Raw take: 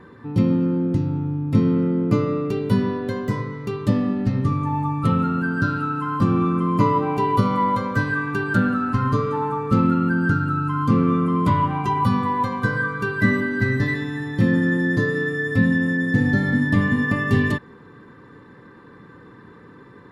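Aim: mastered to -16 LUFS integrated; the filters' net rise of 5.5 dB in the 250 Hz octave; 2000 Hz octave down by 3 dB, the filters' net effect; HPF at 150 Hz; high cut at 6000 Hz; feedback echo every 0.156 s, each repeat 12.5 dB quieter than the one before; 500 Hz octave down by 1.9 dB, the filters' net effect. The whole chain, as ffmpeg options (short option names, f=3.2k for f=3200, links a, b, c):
-af "highpass=150,lowpass=6k,equalizer=f=250:t=o:g=9,equalizer=f=500:t=o:g=-6.5,equalizer=f=2k:t=o:g=-3.5,aecho=1:1:156|312|468:0.237|0.0569|0.0137,volume=1.5dB"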